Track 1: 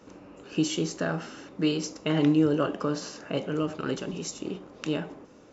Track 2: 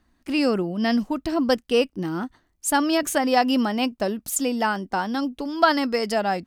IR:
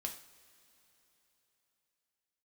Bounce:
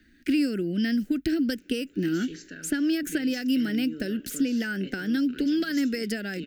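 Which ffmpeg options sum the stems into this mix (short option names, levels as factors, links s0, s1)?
-filter_complex "[0:a]alimiter=limit=0.119:level=0:latency=1:release=385,adelay=1500,volume=0.158[s0];[1:a]equalizer=f=6000:t=o:w=1.7:g=-5,acrossover=split=1500|7700[s1][s2][s3];[s1]acompressor=threshold=0.0398:ratio=4[s4];[s2]acompressor=threshold=0.00282:ratio=4[s5];[s3]acompressor=threshold=0.00501:ratio=4[s6];[s4][s5][s6]amix=inputs=3:normalize=0,volume=1.19[s7];[s0][s7]amix=inputs=2:normalize=0,equalizer=f=11000:w=0.82:g=-9,acrossover=split=140|3000[s8][s9][s10];[s9]acompressor=threshold=0.0355:ratio=6[s11];[s8][s11][s10]amix=inputs=3:normalize=0,firequalizer=gain_entry='entry(110,0);entry(290,9);entry(1000,-29);entry(1500,11)':delay=0.05:min_phase=1"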